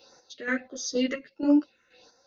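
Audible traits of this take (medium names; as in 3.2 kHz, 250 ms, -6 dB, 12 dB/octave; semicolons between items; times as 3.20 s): phasing stages 4, 1.5 Hz, lowest notch 760–2900 Hz; chopped level 2.1 Hz, depth 60%, duty 40%; a shimmering, thickened sound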